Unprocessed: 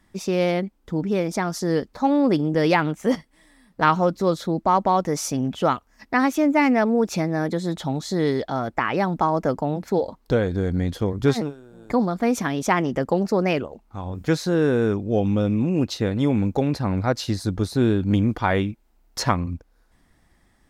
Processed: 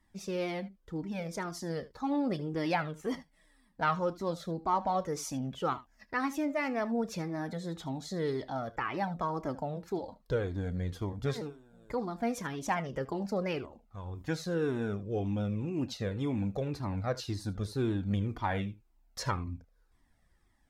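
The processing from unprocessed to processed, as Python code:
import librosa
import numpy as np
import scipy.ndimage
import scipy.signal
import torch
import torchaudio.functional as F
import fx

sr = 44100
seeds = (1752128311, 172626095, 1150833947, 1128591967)

p1 = x + fx.room_early_taps(x, sr, ms=(30, 76), db=(-16.5, -18.0), dry=0)
p2 = fx.comb_cascade(p1, sr, direction='falling', hz=1.9)
y = p2 * 10.0 ** (-7.0 / 20.0)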